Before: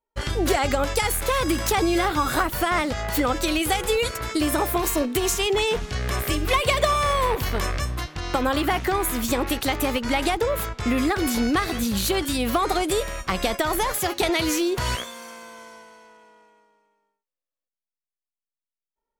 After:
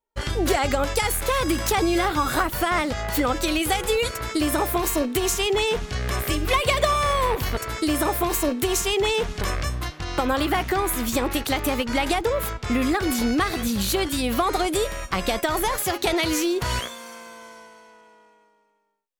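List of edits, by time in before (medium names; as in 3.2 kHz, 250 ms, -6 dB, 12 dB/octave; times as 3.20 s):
4.10–5.94 s: copy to 7.57 s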